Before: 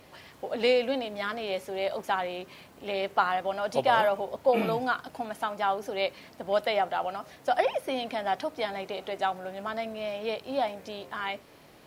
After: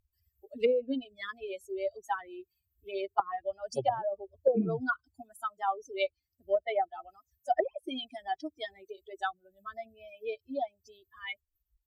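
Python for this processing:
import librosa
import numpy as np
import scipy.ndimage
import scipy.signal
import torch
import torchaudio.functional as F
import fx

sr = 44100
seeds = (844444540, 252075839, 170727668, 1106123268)

y = fx.bin_expand(x, sr, power=3.0)
y = fx.env_lowpass_down(y, sr, base_hz=430.0, full_db=-25.0)
y = F.gain(torch.from_numpy(y), 5.0).numpy()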